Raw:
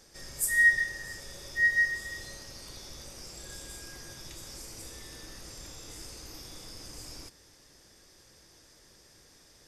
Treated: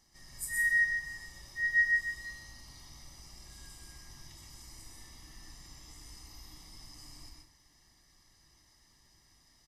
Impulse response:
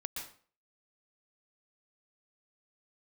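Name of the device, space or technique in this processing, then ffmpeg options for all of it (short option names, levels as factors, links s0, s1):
microphone above a desk: -filter_complex "[0:a]aecho=1:1:1:0.74[s0];[1:a]atrim=start_sample=2205[s1];[s0][s1]afir=irnorm=-1:irlink=0,volume=0.355"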